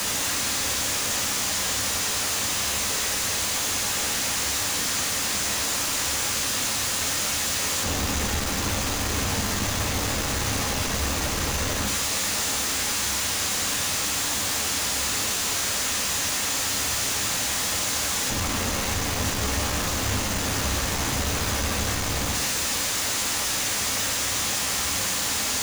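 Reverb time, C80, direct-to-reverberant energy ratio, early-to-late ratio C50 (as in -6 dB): not exponential, 10.5 dB, 2.0 dB, 8.5 dB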